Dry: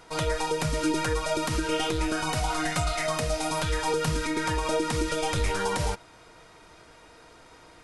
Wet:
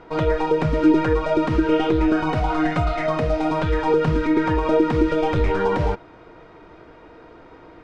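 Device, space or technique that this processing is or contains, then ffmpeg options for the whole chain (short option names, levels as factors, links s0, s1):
phone in a pocket: -af "lowpass=3300,equalizer=f=340:t=o:w=1:g=6,highshelf=f=2400:g=-10.5,volume=2.11"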